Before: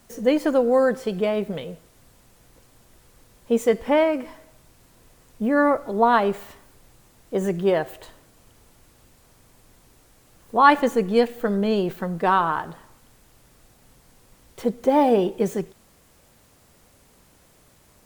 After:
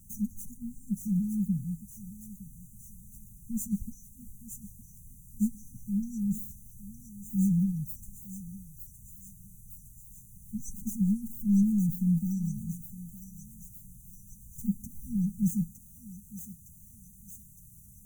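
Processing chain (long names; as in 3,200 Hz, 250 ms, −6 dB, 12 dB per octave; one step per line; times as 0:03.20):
parametric band 4,500 Hz −11.5 dB 1.6 octaves
in parallel at −1.5 dB: brickwall limiter −13 dBFS, peak gain reduction 8.5 dB
on the sum: soft clipping −12.5 dBFS, distortion −13 dB
linear-phase brick-wall band-stop 220–5,800 Hz
feedback echo with a high-pass in the loop 912 ms, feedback 74%, high-pass 700 Hz, level −6 dB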